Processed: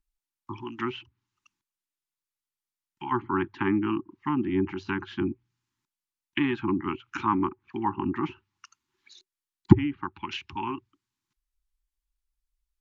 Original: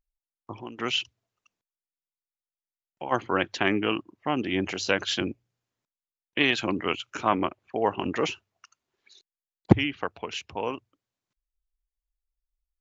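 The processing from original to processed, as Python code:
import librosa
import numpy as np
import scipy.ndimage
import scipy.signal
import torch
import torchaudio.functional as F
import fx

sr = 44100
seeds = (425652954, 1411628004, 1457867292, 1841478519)

y = scipy.signal.sosfilt(scipy.signal.cheby1(5, 1.0, [380.0, 830.0], 'bandstop', fs=sr, output='sos'), x)
y = fx.env_lowpass_down(y, sr, base_hz=1100.0, full_db=-28.0)
y = F.gain(torch.from_numpy(y), 3.0).numpy()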